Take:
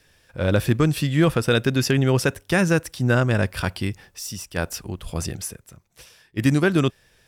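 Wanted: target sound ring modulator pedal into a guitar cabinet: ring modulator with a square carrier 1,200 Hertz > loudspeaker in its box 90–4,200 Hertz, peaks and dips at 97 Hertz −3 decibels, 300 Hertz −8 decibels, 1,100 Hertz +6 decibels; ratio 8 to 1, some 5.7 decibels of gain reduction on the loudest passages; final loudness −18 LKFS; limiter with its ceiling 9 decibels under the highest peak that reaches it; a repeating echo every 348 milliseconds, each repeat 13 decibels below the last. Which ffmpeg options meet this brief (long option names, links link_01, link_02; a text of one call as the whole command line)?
ffmpeg -i in.wav -af "acompressor=threshold=-19dB:ratio=8,alimiter=limit=-19dB:level=0:latency=1,aecho=1:1:348|696|1044:0.224|0.0493|0.0108,aeval=exprs='val(0)*sgn(sin(2*PI*1200*n/s))':channel_layout=same,highpass=90,equalizer=frequency=97:width_type=q:width=4:gain=-3,equalizer=frequency=300:width_type=q:width=4:gain=-8,equalizer=frequency=1100:width_type=q:width=4:gain=6,lowpass=frequency=4200:width=0.5412,lowpass=frequency=4200:width=1.3066,volume=9dB" out.wav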